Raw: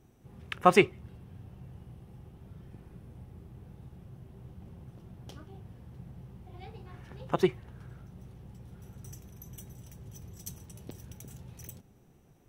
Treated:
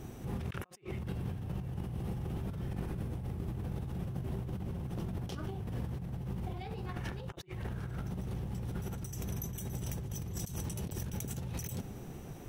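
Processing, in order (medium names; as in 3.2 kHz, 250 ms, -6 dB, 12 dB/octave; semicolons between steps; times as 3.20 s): compressor with a negative ratio -51 dBFS, ratio -1; trim +7 dB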